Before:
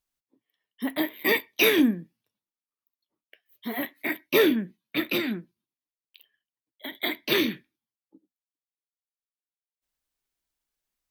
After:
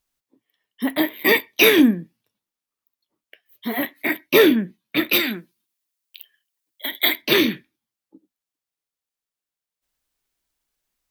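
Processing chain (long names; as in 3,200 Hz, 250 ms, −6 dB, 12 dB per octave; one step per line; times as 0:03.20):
0:05.12–0:07.22: spectral tilt +2.5 dB per octave
level +6.5 dB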